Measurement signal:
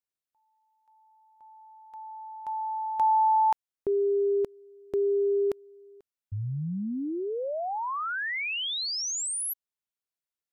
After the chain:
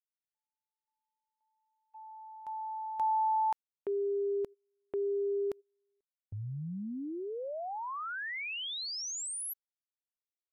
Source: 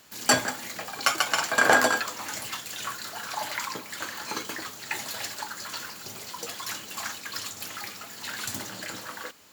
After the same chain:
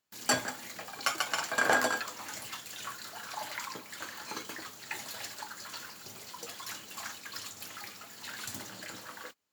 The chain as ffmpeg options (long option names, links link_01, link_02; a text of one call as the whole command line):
ffmpeg -i in.wav -af "agate=range=-22dB:threshold=-45dB:ratio=16:release=134:detection=peak,volume=-7dB" out.wav